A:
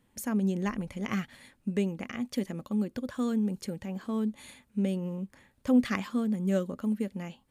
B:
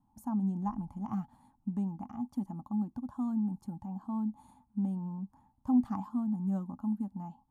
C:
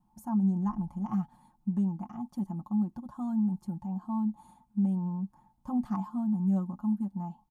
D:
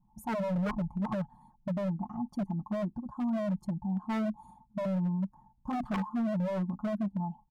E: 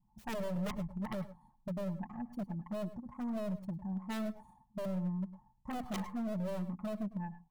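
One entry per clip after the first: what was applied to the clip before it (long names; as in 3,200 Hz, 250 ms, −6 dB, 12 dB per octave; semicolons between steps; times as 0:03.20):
drawn EQ curve 290 Hz 0 dB, 480 Hz −28 dB, 840 Hz +10 dB, 2,000 Hz −29 dB, 10,000 Hz −14 dB; level −3 dB
comb filter 5.6 ms, depth 89%
spectral envelope exaggerated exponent 1.5; wave folding −28.5 dBFS; level +2.5 dB
stylus tracing distortion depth 0.44 ms; convolution reverb RT60 0.10 s, pre-delay 100 ms, DRR 14 dB; level −6 dB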